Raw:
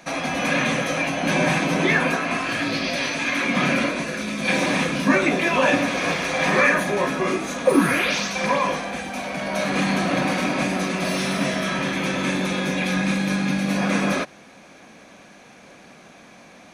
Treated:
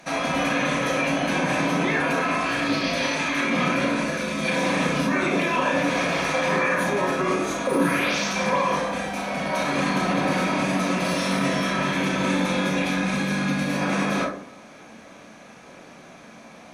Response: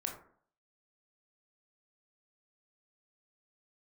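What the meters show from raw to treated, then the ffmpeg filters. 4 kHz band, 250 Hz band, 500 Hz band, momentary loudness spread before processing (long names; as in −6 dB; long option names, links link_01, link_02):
−2.0 dB, −1.5 dB, −1.0 dB, 6 LU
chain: -filter_complex "[0:a]alimiter=limit=-15dB:level=0:latency=1[link_01];[1:a]atrim=start_sample=2205,asetrate=37926,aresample=44100[link_02];[link_01][link_02]afir=irnorm=-1:irlink=0"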